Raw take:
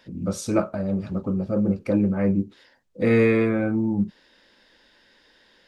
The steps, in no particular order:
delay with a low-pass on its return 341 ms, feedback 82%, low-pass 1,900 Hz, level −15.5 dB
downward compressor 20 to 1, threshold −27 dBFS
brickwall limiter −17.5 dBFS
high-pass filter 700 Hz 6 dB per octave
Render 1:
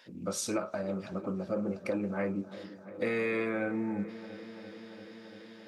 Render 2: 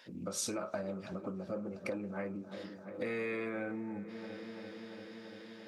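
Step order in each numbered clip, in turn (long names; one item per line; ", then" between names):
high-pass filter, then brickwall limiter, then downward compressor, then delay with a low-pass on its return
brickwall limiter, then delay with a low-pass on its return, then downward compressor, then high-pass filter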